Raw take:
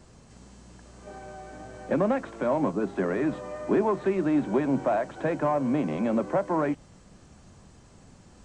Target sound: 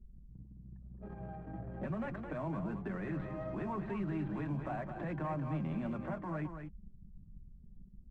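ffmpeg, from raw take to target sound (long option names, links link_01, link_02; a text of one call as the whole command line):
ffmpeg -i in.wav -filter_complex "[0:a]anlmdn=0.251,bass=frequency=250:gain=15,treble=frequency=4000:gain=-9,acrossover=split=130|800[link_01][link_02][link_03];[link_02]acompressor=threshold=-31dB:ratio=6[link_04];[link_01][link_04][link_03]amix=inputs=3:normalize=0,alimiter=limit=-24dB:level=0:latency=1,flanger=delay=5.3:depth=1.6:regen=-27:speed=1:shape=triangular,asplit=2[link_05][link_06];[link_06]aecho=0:1:223:0.422[link_07];[link_05][link_07]amix=inputs=2:normalize=0,asetrate=45938,aresample=44100,volume=-4dB" out.wav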